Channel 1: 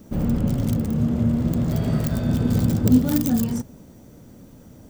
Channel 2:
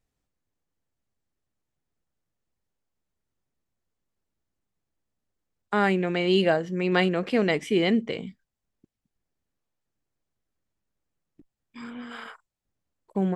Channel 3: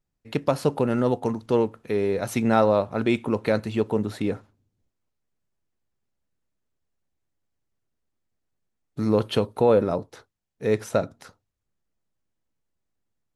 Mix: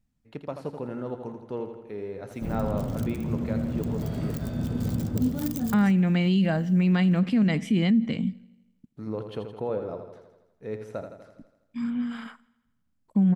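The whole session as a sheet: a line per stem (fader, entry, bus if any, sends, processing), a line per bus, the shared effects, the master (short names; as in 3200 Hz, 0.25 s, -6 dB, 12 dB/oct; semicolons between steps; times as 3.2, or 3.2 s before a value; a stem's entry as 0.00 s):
-8.0 dB, 2.30 s, no send, no echo send, dry
-2.5 dB, 0.00 s, no send, echo send -24 dB, resonant low shelf 300 Hz +8.5 dB, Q 3
-12.0 dB, 0.00 s, no send, echo send -8 dB, high shelf 3300 Hz -11 dB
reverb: off
echo: feedback echo 82 ms, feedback 59%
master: limiter -15.5 dBFS, peak gain reduction 11 dB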